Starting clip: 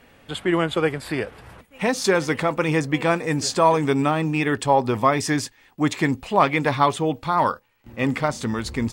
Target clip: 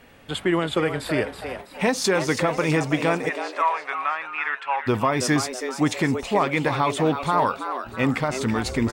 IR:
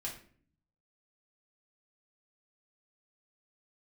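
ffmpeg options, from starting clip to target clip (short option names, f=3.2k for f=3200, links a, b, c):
-filter_complex "[0:a]asplit=3[a][b][c];[a]afade=t=out:st=3.28:d=0.02[d];[b]asuperpass=centerf=1600:order=4:qfactor=1.1,afade=t=in:st=3.28:d=0.02,afade=t=out:st=4.86:d=0.02[e];[c]afade=t=in:st=4.86:d=0.02[f];[d][e][f]amix=inputs=3:normalize=0,alimiter=limit=-12.5dB:level=0:latency=1:release=145,asplit=6[g][h][i][j][k][l];[h]adelay=327,afreqshift=130,volume=-9dB[m];[i]adelay=654,afreqshift=260,volume=-16.3dB[n];[j]adelay=981,afreqshift=390,volume=-23.7dB[o];[k]adelay=1308,afreqshift=520,volume=-31dB[p];[l]adelay=1635,afreqshift=650,volume=-38.3dB[q];[g][m][n][o][p][q]amix=inputs=6:normalize=0,volume=1.5dB"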